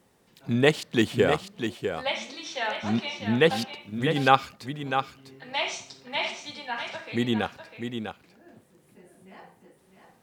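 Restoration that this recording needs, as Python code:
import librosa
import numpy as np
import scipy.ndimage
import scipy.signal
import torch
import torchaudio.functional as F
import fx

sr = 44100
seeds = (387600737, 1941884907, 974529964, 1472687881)

y = fx.fix_echo_inverse(x, sr, delay_ms=650, level_db=-7.5)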